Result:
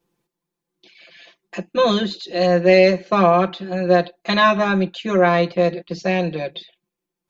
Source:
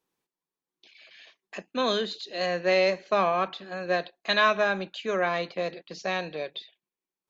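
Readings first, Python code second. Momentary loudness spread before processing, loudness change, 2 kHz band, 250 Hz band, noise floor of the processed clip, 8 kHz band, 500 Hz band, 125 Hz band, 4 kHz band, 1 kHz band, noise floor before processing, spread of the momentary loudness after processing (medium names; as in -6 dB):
13 LU, +9.5 dB, +5.0 dB, +15.0 dB, -84 dBFS, no reading, +10.0 dB, +17.5 dB, +5.0 dB, +8.5 dB, under -85 dBFS, 12 LU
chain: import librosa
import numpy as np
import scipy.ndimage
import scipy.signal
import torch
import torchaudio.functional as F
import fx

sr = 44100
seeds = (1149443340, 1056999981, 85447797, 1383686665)

y = fx.low_shelf(x, sr, hz=470.0, db=11.5)
y = y + 0.98 * np.pad(y, (int(5.8 * sr / 1000.0), 0))[:len(y)]
y = y * librosa.db_to_amplitude(2.0)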